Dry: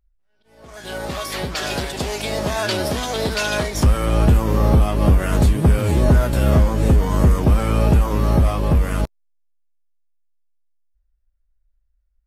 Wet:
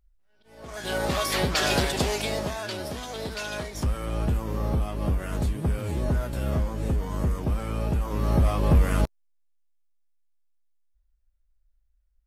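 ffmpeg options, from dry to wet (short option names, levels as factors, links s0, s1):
-af "volume=3.35,afade=t=out:st=1.89:d=0.7:silence=0.237137,afade=t=in:st=7.98:d=0.83:silence=0.334965"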